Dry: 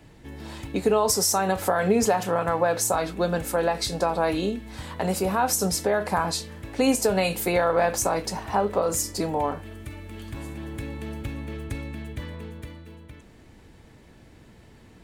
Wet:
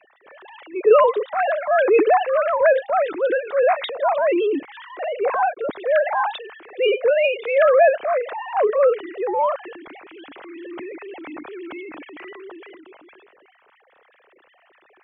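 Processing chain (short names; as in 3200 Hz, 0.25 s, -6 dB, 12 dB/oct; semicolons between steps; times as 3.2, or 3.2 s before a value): sine-wave speech; transient shaper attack -8 dB, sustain +5 dB; gain +6.5 dB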